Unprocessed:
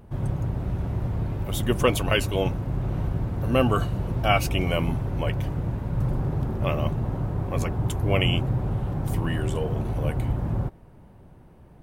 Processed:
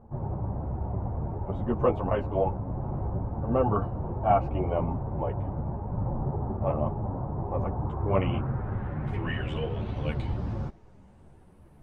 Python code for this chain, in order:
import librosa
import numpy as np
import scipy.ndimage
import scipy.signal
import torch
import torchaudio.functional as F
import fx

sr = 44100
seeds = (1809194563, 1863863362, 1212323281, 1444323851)

y = fx.filter_sweep_lowpass(x, sr, from_hz=860.0, to_hz=11000.0, start_s=7.71, end_s=11.67, q=2.3)
y = fx.ensemble(y, sr)
y = y * 10.0 ** (-1.0 / 20.0)